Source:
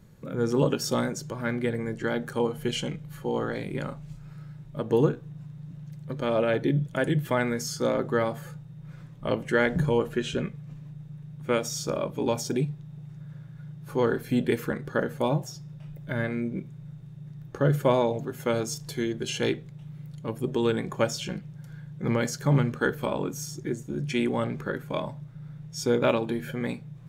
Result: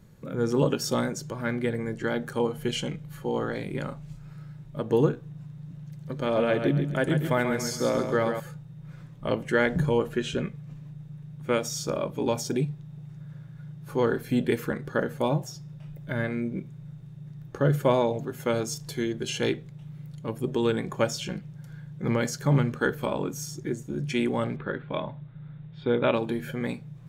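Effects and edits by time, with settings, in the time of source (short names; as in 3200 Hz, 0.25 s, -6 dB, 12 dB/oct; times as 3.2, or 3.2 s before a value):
5.85–8.4 feedback echo 0.136 s, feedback 36%, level -7 dB
24.56–26.14 elliptic low-pass 3800 Hz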